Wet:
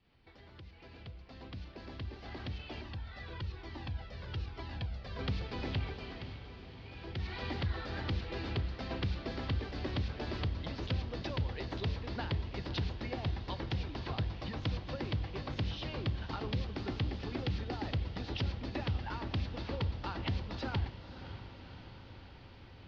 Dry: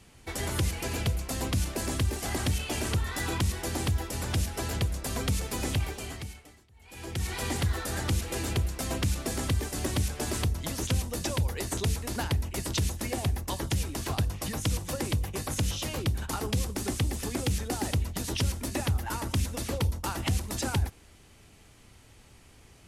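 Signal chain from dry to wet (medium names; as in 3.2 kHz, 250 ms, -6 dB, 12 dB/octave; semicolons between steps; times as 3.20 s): fade-in on the opening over 4.93 s; steep low-pass 4.7 kHz 48 dB/octave; upward compressor, threshold -43 dBFS; echo that smears into a reverb 568 ms, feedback 65%, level -12 dB; 2.81–5.19 s: Shepard-style flanger falling 1.1 Hz; trim -6.5 dB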